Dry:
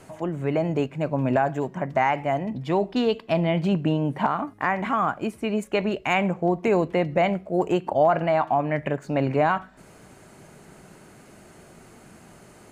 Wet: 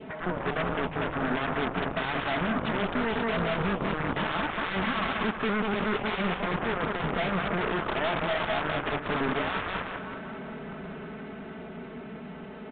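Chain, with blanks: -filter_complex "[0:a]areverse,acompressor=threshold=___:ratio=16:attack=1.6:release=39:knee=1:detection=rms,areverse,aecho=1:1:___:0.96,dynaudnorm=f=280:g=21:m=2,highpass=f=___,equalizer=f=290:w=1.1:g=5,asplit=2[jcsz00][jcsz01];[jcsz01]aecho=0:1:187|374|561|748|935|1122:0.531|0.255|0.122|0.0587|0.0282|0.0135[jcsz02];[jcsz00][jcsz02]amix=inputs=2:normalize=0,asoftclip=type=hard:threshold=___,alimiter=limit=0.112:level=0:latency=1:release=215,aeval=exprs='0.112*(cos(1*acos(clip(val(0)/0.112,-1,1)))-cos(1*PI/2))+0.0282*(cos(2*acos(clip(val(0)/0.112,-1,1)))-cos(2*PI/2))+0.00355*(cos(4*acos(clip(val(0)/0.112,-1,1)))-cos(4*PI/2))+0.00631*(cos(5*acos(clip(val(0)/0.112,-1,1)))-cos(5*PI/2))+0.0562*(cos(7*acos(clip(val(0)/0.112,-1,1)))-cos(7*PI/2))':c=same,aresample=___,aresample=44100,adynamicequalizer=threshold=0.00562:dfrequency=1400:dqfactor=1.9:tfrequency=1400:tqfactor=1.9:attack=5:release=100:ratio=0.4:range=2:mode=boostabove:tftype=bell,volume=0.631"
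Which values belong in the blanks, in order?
0.0355, 4.6, 44, 0.282, 8000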